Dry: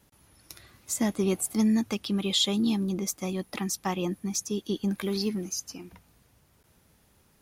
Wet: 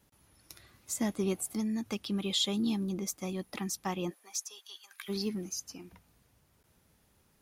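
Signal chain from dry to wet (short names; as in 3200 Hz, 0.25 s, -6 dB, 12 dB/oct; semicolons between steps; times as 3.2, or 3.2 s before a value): 1.32–1.86 compressor, threshold -25 dBFS, peak gain reduction 5 dB; 4.09–5.08 HPF 470 Hz -> 1400 Hz 24 dB/oct; gain -5 dB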